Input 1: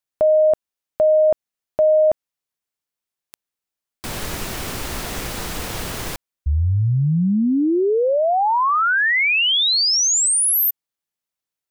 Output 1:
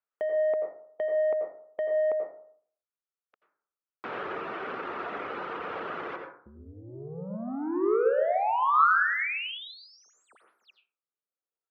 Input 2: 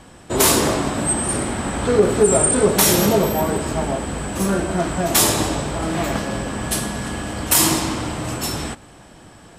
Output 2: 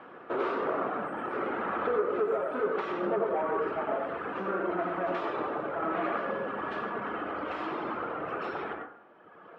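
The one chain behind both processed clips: reverb removal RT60 1.9 s; compression 16:1, threshold -21 dBFS; saturation -24 dBFS; cabinet simulation 350–2400 Hz, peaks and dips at 430 Hz +5 dB, 1.3 kHz +8 dB, 2 kHz -3 dB; plate-style reverb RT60 0.56 s, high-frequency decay 0.35×, pre-delay 75 ms, DRR 2.5 dB; trim -2 dB

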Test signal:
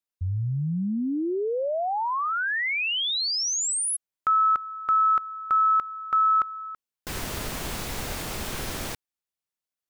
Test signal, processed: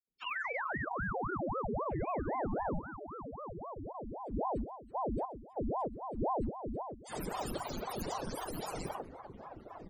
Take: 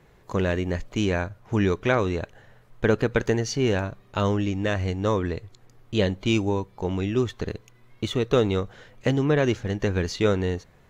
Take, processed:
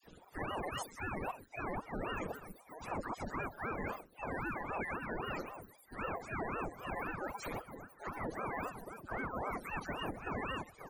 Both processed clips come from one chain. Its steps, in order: spectrum inverted on a logarithmic axis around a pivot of 420 Hz; reverb removal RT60 1.3 s; reverse; compression 8:1, threshold -34 dBFS; reverse; peaking EQ 2.3 kHz -3 dB 1.8 oct; phase dispersion lows, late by 72 ms, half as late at 950 Hz; on a send: delay 127 ms -22 dB; on the sum: peak limiter -33.5 dBFS; echo from a far wall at 290 m, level -8 dB; ring modulator with a swept carrier 500 Hz, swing 85%, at 3.8 Hz; trim +5 dB

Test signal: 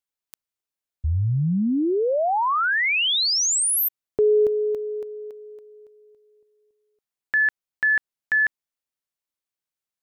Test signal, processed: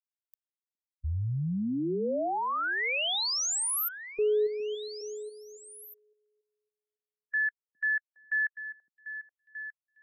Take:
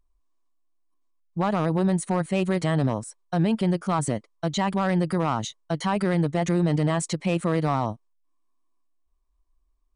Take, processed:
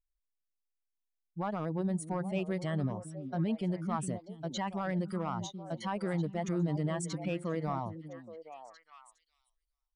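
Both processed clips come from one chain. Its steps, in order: expander on every frequency bin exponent 1.5; repeats whose band climbs or falls 411 ms, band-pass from 230 Hz, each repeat 1.4 oct, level -6 dB; trim -8 dB

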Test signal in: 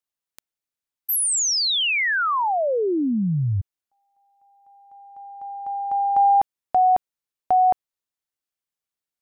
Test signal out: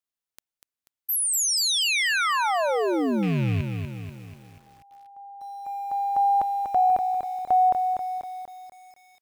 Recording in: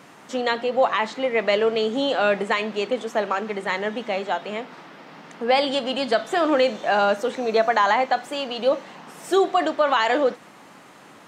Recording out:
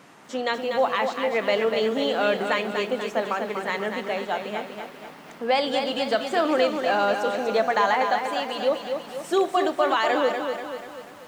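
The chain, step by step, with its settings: rattle on loud lows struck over -26 dBFS, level -24 dBFS; bit-crushed delay 243 ms, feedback 55%, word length 8-bit, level -6 dB; trim -3 dB

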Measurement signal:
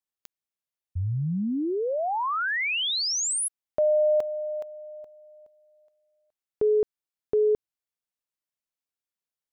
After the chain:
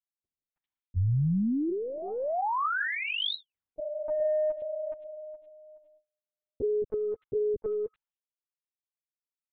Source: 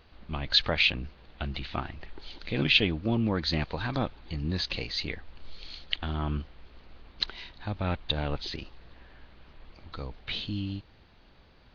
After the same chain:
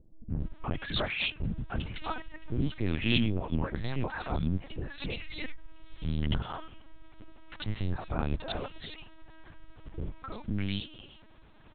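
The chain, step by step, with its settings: gate with hold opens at -53 dBFS, hold 179 ms, range -30 dB; dynamic bell 120 Hz, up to +3 dB, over -40 dBFS, Q 0.75; in parallel at -1 dB: compression 16:1, threshold -34 dBFS; on the sum: saturation -9 dBFS; distance through air 130 m; three bands offset in time lows, mids, highs 310/400 ms, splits 460/2300 Hz; LPC vocoder at 8 kHz pitch kept; trim -2.5 dB

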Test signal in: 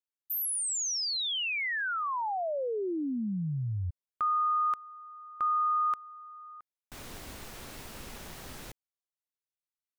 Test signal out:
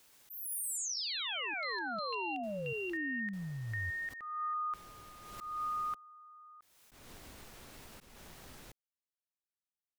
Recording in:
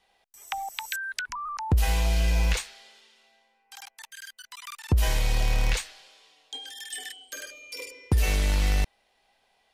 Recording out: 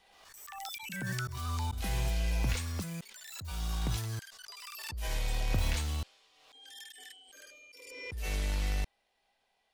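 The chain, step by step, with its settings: ever faster or slower copies 126 ms, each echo +7 st, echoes 3; slow attack 230 ms; swell ahead of each attack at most 41 dB/s; trim -8.5 dB

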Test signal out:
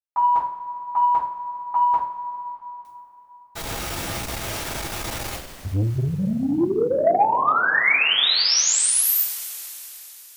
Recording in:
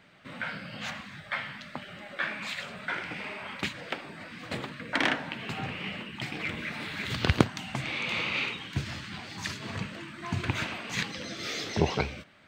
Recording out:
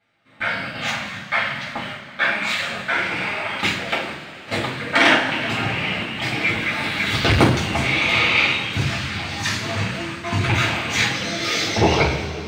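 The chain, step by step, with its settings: hum notches 60/120/180/240/300/360 Hz; gate with hold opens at -32 dBFS; hard clipper -6.5 dBFS; two-slope reverb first 0.42 s, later 3.9 s, from -18 dB, DRR -9 dB; transformer saturation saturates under 340 Hz; trim +4 dB

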